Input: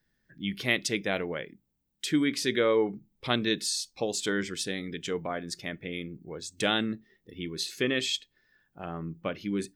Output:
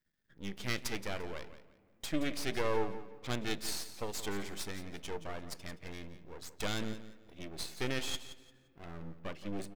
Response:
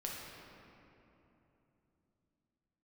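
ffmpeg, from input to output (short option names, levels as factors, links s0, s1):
-filter_complex "[0:a]aeval=exprs='max(val(0),0)':c=same,aecho=1:1:173|346|519:0.224|0.056|0.014,asplit=2[s0][s1];[1:a]atrim=start_sample=2205[s2];[s1][s2]afir=irnorm=-1:irlink=0,volume=0.0891[s3];[s0][s3]amix=inputs=2:normalize=0,volume=0.596"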